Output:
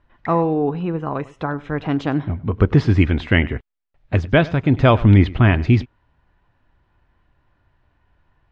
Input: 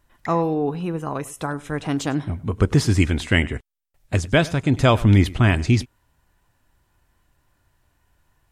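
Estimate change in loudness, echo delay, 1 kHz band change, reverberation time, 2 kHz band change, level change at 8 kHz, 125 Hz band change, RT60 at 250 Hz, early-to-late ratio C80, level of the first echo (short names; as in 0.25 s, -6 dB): +2.5 dB, none, +2.5 dB, none, +1.5 dB, under -15 dB, +3.0 dB, none, none, none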